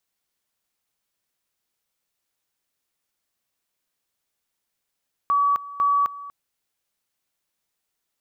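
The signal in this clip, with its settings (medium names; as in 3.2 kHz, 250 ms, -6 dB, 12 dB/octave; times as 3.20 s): two-level tone 1.14 kHz -16.5 dBFS, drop 17.5 dB, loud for 0.26 s, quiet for 0.24 s, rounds 2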